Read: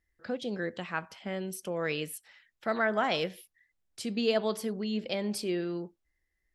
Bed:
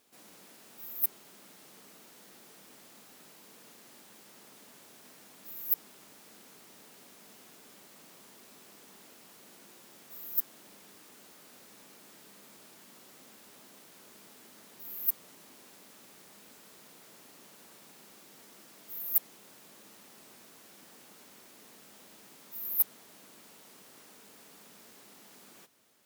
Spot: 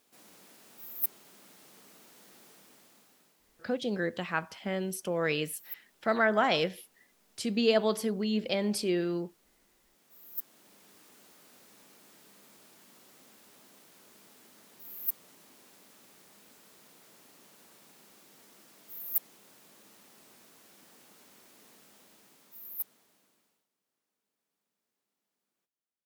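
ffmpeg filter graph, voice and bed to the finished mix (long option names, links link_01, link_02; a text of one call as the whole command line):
ffmpeg -i stem1.wav -i stem2.wav -filter_complex "[0:a]adelay=3400,volume=2.5dB[link_01];[1:a]volume=9dB,afade=type=out:start_time=2.46:duration=0.9:silence=0.251189,afade=type=in:start_time=9.94:duration=1.07:silence=0.298538,afade=type=out:start_time=21.71:duration=1.97:silence=0.0375837[link_02];[link_01][link_02]amix=inputs=2:normalize=0" out.wav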